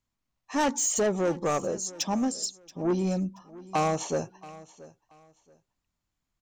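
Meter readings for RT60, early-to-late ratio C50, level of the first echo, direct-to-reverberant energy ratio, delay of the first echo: none, none, -19.5 dB, none, 0.679 s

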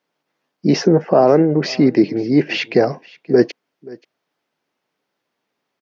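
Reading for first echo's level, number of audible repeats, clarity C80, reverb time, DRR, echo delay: -22.0 dB, 1, none, none, none, 0.53 s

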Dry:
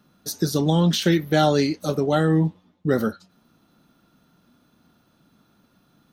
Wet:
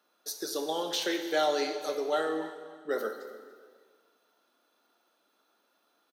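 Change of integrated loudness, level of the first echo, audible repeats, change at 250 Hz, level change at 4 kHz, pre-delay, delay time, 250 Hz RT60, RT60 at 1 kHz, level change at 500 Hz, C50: -10.0 dB, -18.5 dB, 2, -16.5 dB, -6.0 dB, 5 ms, 0.287 s, 1.7 s, 1.7 s, -7.0 dB, 7.5 dB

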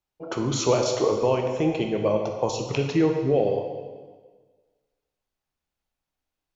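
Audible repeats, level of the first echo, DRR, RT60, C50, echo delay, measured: none, none, 2.5 dB, 1.5 s, 5.0 dB, none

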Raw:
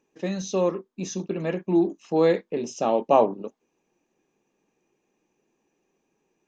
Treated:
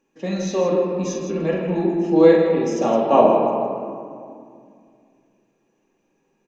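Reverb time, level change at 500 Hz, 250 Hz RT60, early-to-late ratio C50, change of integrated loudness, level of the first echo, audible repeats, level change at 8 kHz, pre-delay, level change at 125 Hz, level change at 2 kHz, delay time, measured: 2.3 s, +6.5 dB, 3.0 s, 1.0 dB, +6.0 dB, -6.0 dB, 2, n/a, 4 ms, +5.5 dB, +5.5 dB, 44 ms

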